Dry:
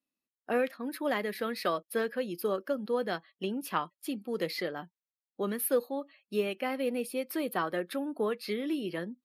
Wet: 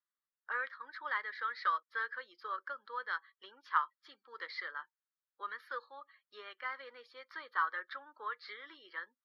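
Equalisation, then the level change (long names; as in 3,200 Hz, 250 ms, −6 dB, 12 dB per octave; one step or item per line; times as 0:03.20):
high-pass filter 910 Hz 24 dB per octave
head-to-tape spacing loss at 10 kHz 42 dB
phaser with its sweep stopped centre 2,600 Hz, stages 6
+9.5 dB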